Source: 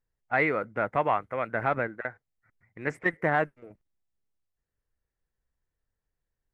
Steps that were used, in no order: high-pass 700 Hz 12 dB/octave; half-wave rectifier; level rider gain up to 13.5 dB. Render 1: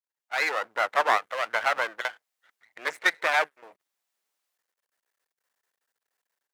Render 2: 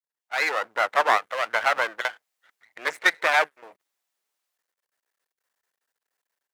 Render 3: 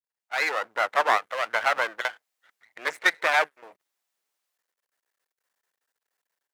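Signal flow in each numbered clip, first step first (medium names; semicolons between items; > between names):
level rider > half-wave rectifier > high-pass; half-wave rectifier > high-pass > level rider; half-wave rectifier > level rider > high-pass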